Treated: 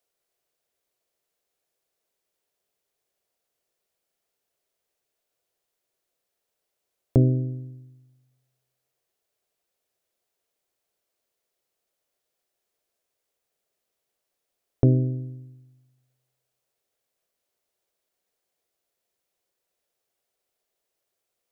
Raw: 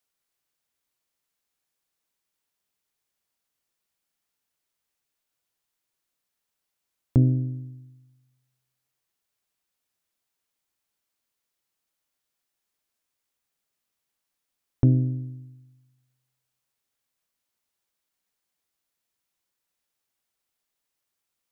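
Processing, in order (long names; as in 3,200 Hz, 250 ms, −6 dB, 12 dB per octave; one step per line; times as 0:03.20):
flat-topped bell 510 Hz +9.5 dB 1.2 octaves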